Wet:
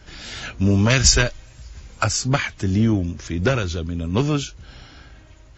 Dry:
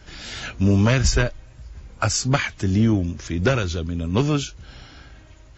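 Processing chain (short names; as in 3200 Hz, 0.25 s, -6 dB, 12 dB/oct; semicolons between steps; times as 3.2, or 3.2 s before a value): 0.9–2.04 high shelf 2200 Hz +11 dB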